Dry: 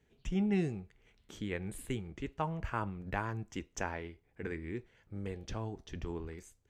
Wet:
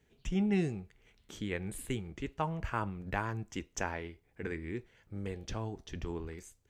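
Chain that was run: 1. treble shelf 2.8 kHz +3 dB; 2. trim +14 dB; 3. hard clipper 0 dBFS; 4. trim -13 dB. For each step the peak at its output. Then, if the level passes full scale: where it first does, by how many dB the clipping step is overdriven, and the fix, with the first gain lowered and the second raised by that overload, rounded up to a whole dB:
-18.0 dBFS, -4.0 dBFS, -4.0 dBFS, -17.0 dBFS; nothing clips

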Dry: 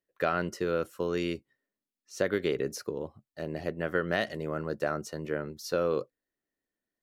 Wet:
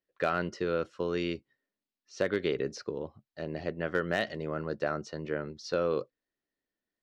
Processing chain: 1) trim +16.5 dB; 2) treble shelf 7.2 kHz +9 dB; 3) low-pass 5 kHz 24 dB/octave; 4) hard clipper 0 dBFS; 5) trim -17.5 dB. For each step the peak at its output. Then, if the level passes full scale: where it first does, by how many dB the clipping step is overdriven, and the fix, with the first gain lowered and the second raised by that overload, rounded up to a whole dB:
+2.5 dBFS, +3.5 dBFS, +3.5 dBFS, 0.0 dBFS, -17.5 dBFS; step 1, 3.5 dB; step 1 +12.5 dB, step 5 -13.5 dB

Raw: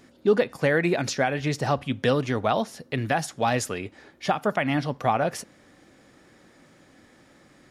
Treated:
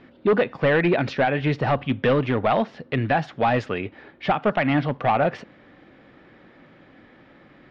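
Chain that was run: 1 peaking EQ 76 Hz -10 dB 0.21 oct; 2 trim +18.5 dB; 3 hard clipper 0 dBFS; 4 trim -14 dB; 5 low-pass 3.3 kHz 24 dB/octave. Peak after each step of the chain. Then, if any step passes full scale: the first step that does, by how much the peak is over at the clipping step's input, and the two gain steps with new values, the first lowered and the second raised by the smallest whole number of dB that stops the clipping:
-10.0 dBFS, +8.5 dBFS, 0.0 dBFS, -14.0 dBFS, -12.5 dBFS; step 2, 8.5 dB; step 2 +9.5 dB, step 4 -5 dB

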